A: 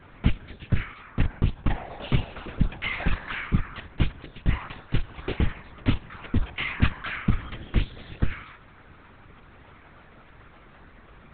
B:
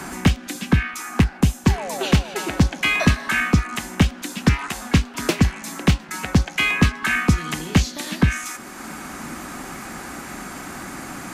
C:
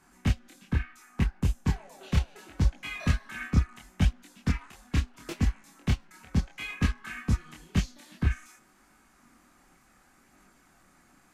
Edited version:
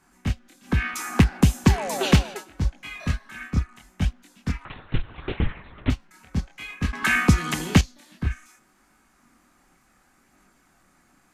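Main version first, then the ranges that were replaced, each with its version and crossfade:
C
0.74–2.34 from B, crossfade 0.24 s
4.65–5.9 from A
6.93–7.81 from B

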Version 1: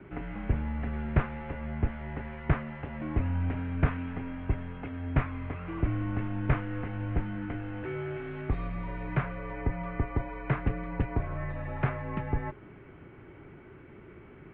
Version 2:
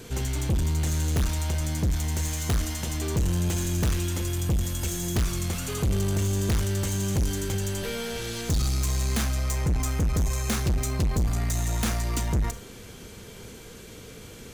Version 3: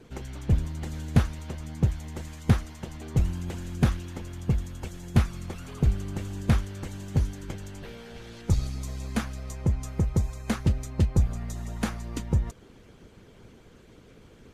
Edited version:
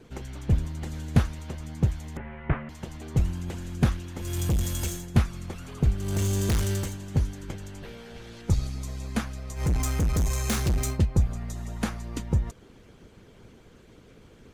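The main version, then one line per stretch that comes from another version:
3
2.17–2.69 from 1
4.28–4.95 from 2, crossfade 0.24 s
6.09–6.85 from 2, crossfade 0.24 s
9.6–10.94 from 2, crossfade 0.10 s

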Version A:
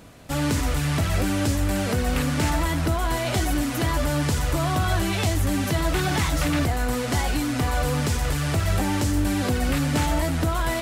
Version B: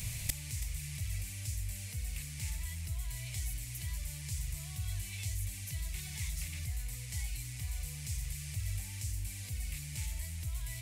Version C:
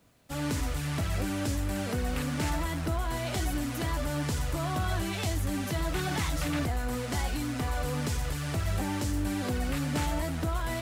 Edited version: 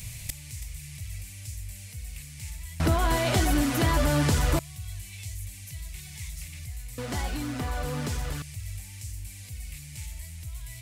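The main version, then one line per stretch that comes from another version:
B
2.8–4.59 from A
6.98–8.42 from C

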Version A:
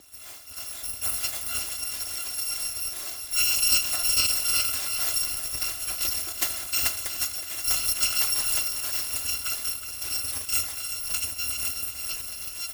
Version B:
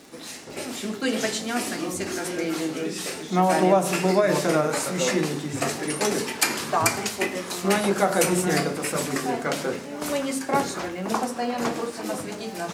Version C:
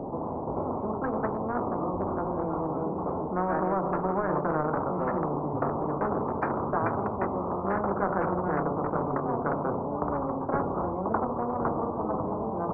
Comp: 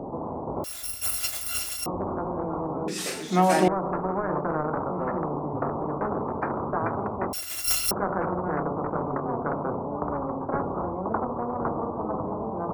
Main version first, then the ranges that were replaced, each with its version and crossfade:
C
0.64–1.86 from A
2.88–3.68 from B
7.33–7.91 from A

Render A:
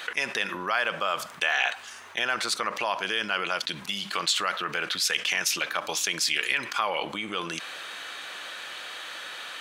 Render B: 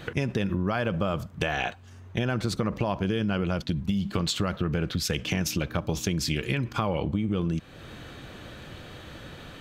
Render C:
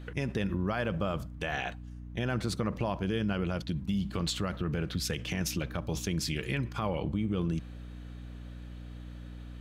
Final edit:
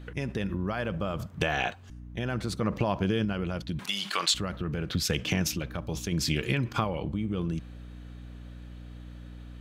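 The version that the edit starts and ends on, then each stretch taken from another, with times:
C
1.19–1.9 from B
2.61–3.25 from B
3.79–4.34 from A
4.9–5.52 from B
6.12–6.84 from B

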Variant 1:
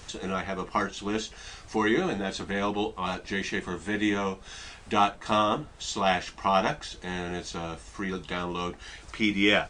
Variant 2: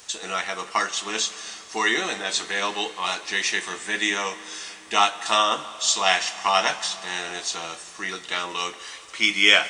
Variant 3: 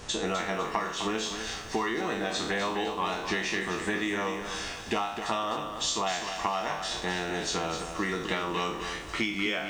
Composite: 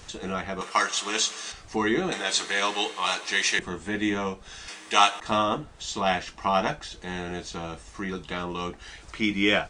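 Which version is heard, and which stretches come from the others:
1
0.61–1.52 from 2
2.12–3.59 from 2
4.68–5.2 from 2
not used: 3

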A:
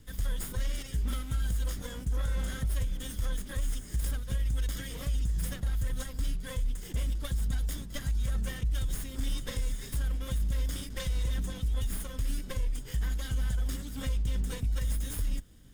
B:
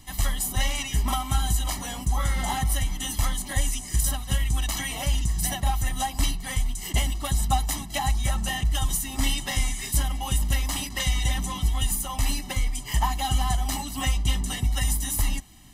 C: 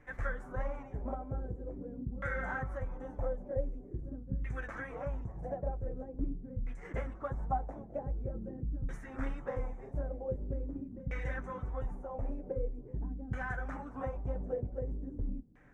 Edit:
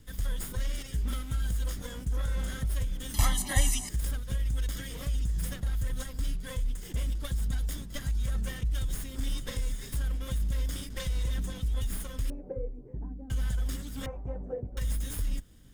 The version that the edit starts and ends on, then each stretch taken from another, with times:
A
3.14–3.89 from B
12.3–13.3 from C
14.06–14.77 from C

